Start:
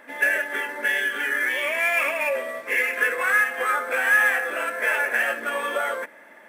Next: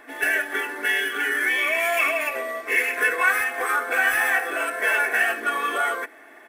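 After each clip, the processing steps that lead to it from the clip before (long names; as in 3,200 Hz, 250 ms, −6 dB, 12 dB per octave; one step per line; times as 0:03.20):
comb filter 2.7 ms, depth 93%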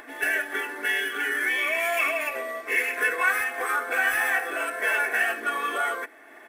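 upward compression, threshold −38 dBFS
level −3 dB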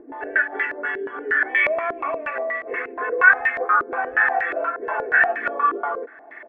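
low-pass on a step sequencer 8.4 Hz 370–2,000 Hz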